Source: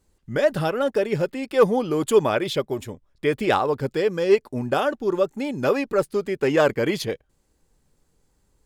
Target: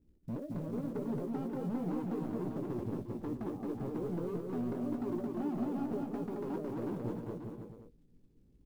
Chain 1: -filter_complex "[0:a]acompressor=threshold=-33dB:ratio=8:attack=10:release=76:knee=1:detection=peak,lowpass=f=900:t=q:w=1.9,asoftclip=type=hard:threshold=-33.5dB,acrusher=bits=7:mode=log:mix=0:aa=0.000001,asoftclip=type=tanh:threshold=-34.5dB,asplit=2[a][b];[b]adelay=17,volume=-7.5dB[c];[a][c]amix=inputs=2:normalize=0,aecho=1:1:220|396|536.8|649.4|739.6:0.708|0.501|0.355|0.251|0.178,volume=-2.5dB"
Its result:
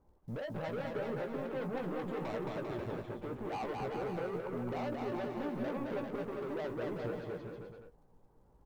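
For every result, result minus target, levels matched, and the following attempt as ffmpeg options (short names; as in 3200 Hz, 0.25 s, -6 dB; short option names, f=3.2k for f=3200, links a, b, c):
soft clip: distortion +11 dB; 1000 Hz band +6.0 dB
-filter_complex "[0:a]acompressor=threshold=-33dB:ratio=8:attack=10:release=76:knee=1:detection=peak,lowpass=f=900:t=q:w=1.9,asoftclip=type=hard:threshold=-33.5dB,acrusher=bits=7:mode=log:mix=0:aa=0.000001,asoftclip=type=tanh:threshold=-27.5dB,asplit=2[a][b];[b]adelay=17,volume=-7.5dB[c];[a][c]amix=inputs=2:normalize=0,aecho=1:1:220|396|536.8|649.4|739.6:0.708|0.501|0.355|0.251|0.178,volume=-2.5dB"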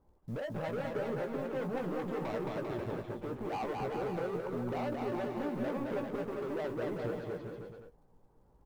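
1000 Hz band +6.0 dB
-filter_complex "[0:a]acompressor=threshold=-33dB:ratio=8:attack=10:release=76:knee=1:detection=peak,lowpass=f=280:t=q:w=1.9,asoftclip=type=hard:threshold=-33.5dB,acrusher=bits=7:mode=log:mix=0:aa=0.000001,asoftclip=type=tanh:threshold=-27.5dB,asplit=2[a][b];[b]adelay=17,volume=-7.5dB[c];[a][c]amix=inputs=2:normalize=0,aecho=1:1:220|396|536.8|649.4|739.6:0.708|0.501|0.355|0.251|0.178,volume=-2.5dB"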